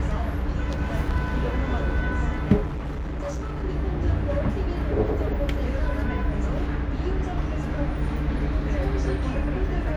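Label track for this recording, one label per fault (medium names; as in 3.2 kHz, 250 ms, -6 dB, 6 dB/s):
2.650000	3.640000	clipped -26.5 dBFS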